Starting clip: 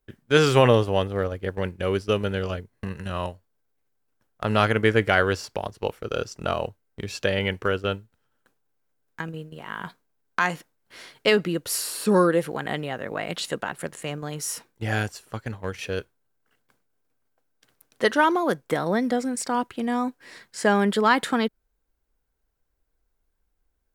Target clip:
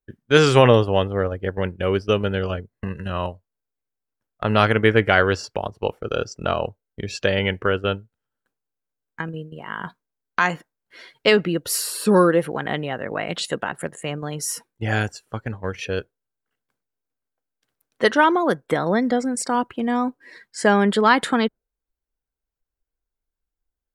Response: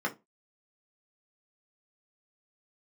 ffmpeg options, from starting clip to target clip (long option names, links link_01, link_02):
-af "afftdn=noise_reduction=15:noise_floor=-45,volume=3.5dB"